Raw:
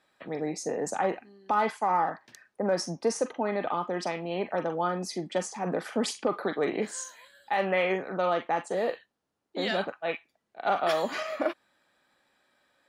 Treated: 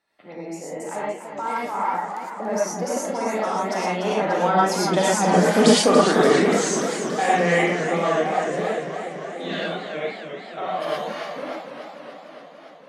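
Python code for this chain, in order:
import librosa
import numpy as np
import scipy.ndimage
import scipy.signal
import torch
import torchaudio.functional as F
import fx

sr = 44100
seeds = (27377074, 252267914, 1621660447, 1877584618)

y = fx.doppler_pass(x, sr, speed_mps=27, closest_m=25.0, pass_at_s=5.52)
y = fx.rev_gated(y, sr, seeds[0], gate_ms=140, shape='rising', drr_db=-5.0)
y = fx.echo_warbled(y, sr, ms=288, feedback_pct=74, rate_hz=2.8, cents=142, wet_db=-9)
y = F.gain(torch.from_numpy(y), 8.0).numpy()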